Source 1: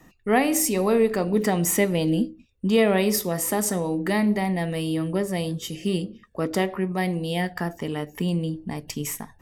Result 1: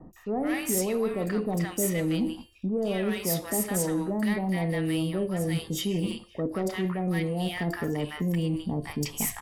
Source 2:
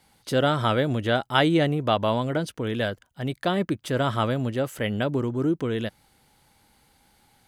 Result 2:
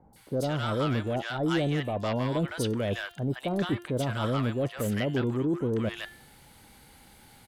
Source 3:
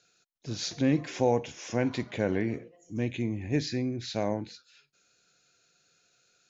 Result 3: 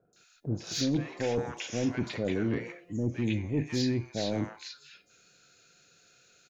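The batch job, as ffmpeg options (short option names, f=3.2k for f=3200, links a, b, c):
-filter_complex "[0:a]bandreject=f=348.8:t=h:w=4,bandreject=f=697.6:t=h:w=4,bandreject=f=1.0464k:t=h:w=4,bandreject=f=1.3952k:t=h:w=4,bandreject=f=1.744k:t=h:w=4,bandreject=f=2.0928k:t=h:w=4,bandreject=f=2.4416k:t=h:w=4,bandreject=f=2.7904k:t=h:w=4,bandreject=f=3.1392k:t=h:w=4,bandreject=f=3.488k:t=h:w=4,bandreject=f=3.8368k:t=h:w=4,bandreject=f=4.1856k:t=h:w=4,bandreject=f=4.5344k:t=h:w=4,bandreject=f=4.8832k:t=h:w=4,bandreject=f=5.232k:t=h:w=4,bandreject=f=5.5808k:t=h:w=4,bandreject=f=5.9296k:t=h:w=4,bandreject=f=6.2784k:t=h:w=4,bandreject=f=6.6272k:t=h:w=4,bandreject=f=6.976k:t=h:w=4,bandreject=f=7.3248k:t=h:w=4,bandreject=f=7.6736k:t=h:w=4,bandreject=f=8.0224k:t=h:w=4,bandreject=f=8.3712k:t=h:w=4,bandreject=f=8.72k:t=h:w=4,bandreject=f=9.0688k:t=h:w=4,bandreject=f=9.4176k:t=h:w=4,bandreject=f=9.7664k:t=h:w=4,bandreject=f=10.1152k:t=h:w=4,bandreject=f=10.464k:t=h:w=4,bandreject=f=10.8128k:t=h:w=4,bandreject=f=11.1616k:t=h:w=4,bandreject=f=11.5104k:t=h:w=4,bandreject=f=11.8592k:t=h:w=4,bandreject=f=12.208k:t=h:w=4,areverse,acompressor=threshold=-33dB:ratio=4,areverse,aeval=exprs='0.0891*sin(PI/2*1.58*val(0)/0.0891)':c=same,acrossover=split=910|5200[a][b][c];[c]adelay=130[d];[b]adelay=160[e];[a][e][d]amix=inputs=3:normalize=0"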